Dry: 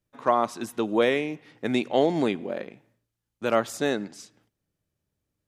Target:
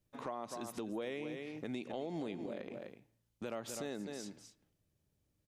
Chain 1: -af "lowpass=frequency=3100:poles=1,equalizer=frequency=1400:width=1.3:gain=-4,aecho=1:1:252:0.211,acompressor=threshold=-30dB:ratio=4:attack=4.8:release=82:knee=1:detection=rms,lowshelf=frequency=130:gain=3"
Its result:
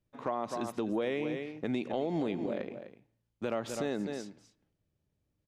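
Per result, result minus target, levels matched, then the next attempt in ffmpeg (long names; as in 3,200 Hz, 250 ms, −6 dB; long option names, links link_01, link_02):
downward compressor: peak gain reduction −8.5 dB; 4,000 Hz band −4.0 dB
-af "lowpass=frequency=3100:poles=1,equalizer=frequency=1400:width=1.3:gain=-4,aecho=1:1:252:0.211,acompressor=threshold=-41dB:ratio=4:attack=4.8:release=82:knee=1:detection=rms,lowshelf=frequency=130:gain=3"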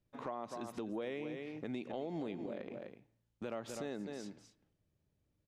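4,000 Hz band −3.0 dB
-af "equalizer=frequency=1400:width=1.3:gain=-4,aecho=1:1:252:0.211,acompressor=threshold=-41dB:ratio=4:attack=4.8:release=82:knee=1:detection=rms,lowshelf=frequency=130:gain=3"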